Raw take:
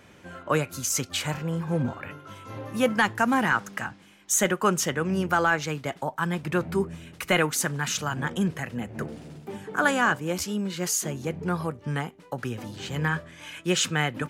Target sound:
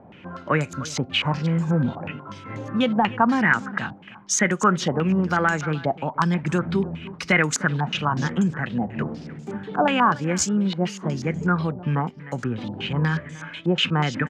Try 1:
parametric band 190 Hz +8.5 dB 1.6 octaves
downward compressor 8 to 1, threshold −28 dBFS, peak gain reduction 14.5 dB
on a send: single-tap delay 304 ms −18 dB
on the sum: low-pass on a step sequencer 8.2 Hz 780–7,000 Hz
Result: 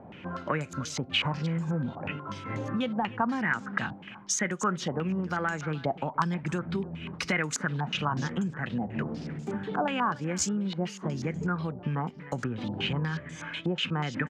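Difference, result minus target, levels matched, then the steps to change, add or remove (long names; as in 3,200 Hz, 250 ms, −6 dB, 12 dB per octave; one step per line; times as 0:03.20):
downward compressor: peak gain reduction +9.5 dB
change: downward compressor 8 to 1, threshold −17 dBFS, peak gain reduction 5 dB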